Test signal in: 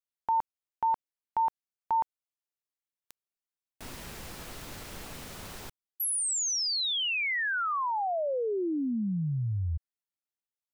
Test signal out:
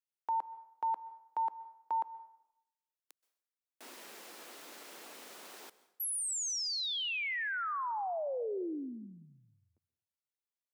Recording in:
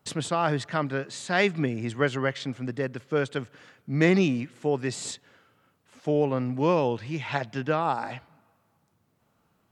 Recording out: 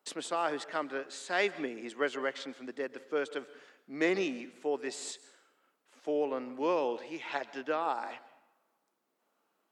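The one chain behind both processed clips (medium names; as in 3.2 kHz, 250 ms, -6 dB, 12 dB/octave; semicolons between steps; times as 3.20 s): high-pass 290 Hz 24 dB/octave; plate-style reverb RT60 0.78 s, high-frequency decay 0.8×, pre-delay 115 ms, DRR 17 dB; trim -6 dB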